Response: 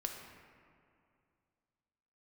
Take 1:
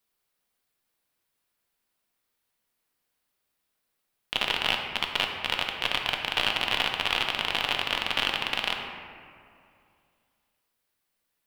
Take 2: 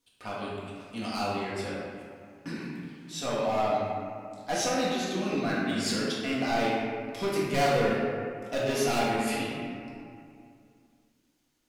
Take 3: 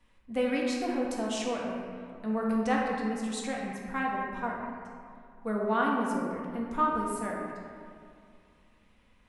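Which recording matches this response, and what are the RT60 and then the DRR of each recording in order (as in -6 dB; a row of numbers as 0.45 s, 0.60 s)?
1; 2.4 s, 2.4 s, 2.4 s; 2.0 dB, -7.5 dB, -3.0 dB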